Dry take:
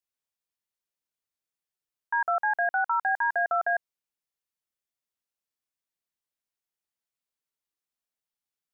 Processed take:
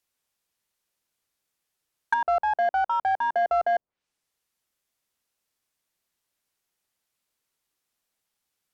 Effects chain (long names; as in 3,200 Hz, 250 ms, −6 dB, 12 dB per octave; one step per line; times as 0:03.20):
treble cut that deepens with the level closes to 690 Hz, closed at −27 dBFS
in parallel at −4 dB: soft clipping −35.5 dBFS, distortion −10 dB
on the sum: level +6.5 dB